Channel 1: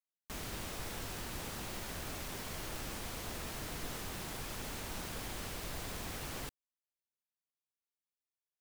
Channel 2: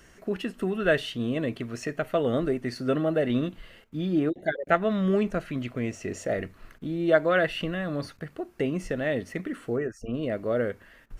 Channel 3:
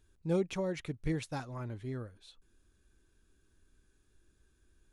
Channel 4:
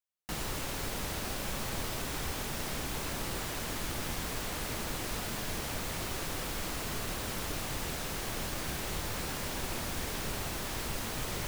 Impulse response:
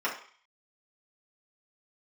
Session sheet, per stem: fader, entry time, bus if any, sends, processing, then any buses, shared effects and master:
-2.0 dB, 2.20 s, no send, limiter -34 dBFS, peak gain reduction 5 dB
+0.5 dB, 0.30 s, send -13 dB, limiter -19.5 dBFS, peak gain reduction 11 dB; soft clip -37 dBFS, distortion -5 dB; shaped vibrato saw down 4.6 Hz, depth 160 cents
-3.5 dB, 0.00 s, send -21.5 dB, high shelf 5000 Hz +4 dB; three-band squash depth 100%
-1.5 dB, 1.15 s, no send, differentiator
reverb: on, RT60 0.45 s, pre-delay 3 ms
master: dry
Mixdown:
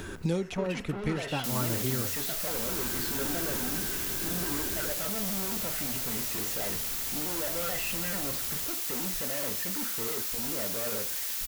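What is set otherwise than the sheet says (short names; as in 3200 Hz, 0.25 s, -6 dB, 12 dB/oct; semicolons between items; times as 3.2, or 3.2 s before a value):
stem 3 -3.5 dB -> +6.5 dB; stem 4 -1.5 dB -> +6.5 dB; master: extra bell 9000 Hz -4 dB 0.26 oct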